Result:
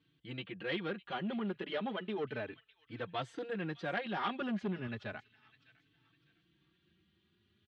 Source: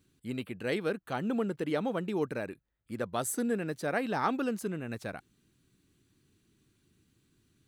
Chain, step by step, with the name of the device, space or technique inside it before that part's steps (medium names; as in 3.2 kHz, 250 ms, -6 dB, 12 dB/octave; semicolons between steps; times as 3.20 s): 4.40–4.87 s: bass shelf 250 Hz +9.5 dB; feedback echo behind a high-pass 605 ms, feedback 35%, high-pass 2.2 kHz, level -16.5 dB; barber-pole flanger into a guitar amplifier (endless flanger 4 ms +0.33 Hz; saturation -28.5 dBFS, distortion -15 dB; cabinet simulation 82–4100 Hz, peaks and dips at 260 Hz -4 dB, 510 Hz -3 dB, 1.8 kHz +4 dB, 3.2 kHz +9 dB)